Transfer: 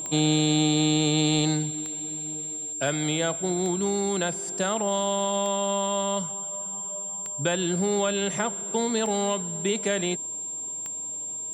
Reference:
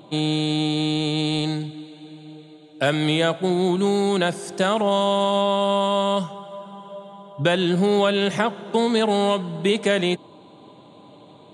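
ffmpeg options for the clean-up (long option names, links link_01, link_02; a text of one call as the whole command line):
ffmpeg -i in.wav -af "adeclick=threshold=4,bandreject=frequency=7400:width=30,asetnsamples=nb_out_samples=441:pad=0,asendcmd='2.73 volume volume 6.5dB',volume=0dB" out.wav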